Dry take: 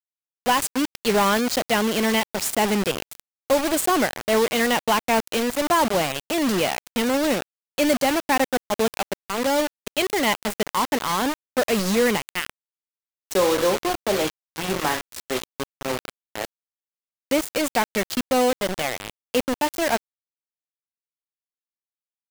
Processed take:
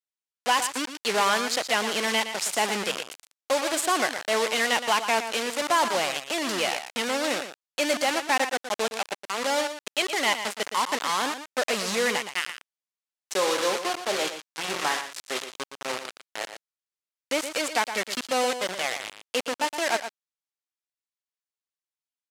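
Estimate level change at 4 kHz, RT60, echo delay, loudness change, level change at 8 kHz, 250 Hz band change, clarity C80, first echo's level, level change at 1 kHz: 0.0 dB, no reverb, 117 ms, -3.5 dB, -1.0 dB, -10.5 dB, no reverb, -10.0 dB, -2.5 dB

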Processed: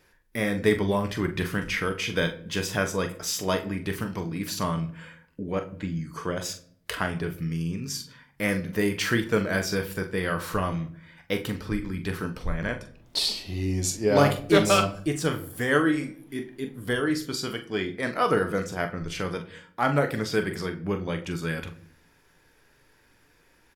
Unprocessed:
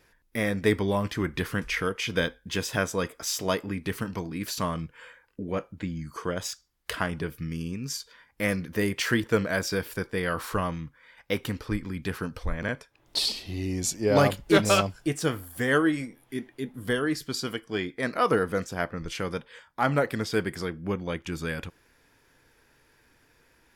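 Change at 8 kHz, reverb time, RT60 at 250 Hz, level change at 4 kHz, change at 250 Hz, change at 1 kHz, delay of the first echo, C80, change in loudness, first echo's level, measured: +1.0 dB, 0.60 s, 0.90 s, +1.0 dB, +1.5 dB, +1.0 dB, 42 ms, 18.0 dB, +1.0 dB, -10.0 dB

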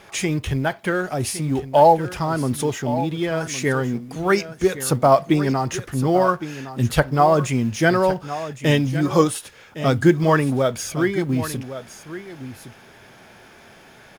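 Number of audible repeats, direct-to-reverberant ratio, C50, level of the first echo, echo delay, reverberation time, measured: 1, no reverb, no reverb, -13.0 dB, 1112 ms, no reverb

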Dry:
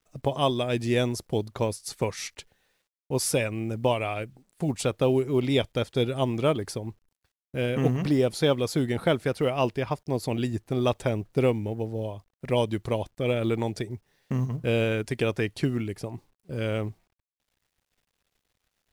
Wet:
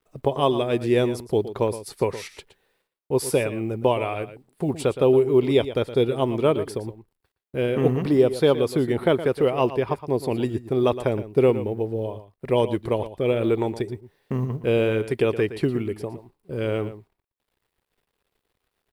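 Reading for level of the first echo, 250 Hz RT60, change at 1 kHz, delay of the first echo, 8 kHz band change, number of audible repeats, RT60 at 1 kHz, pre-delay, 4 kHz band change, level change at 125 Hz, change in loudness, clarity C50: -13.0 dB, no reverb, +3.5 dB, 117 ms, no reading, 1, no reverb, no reverb, -1.0 dB, +0.5 dB, +4.0 dB, no reverb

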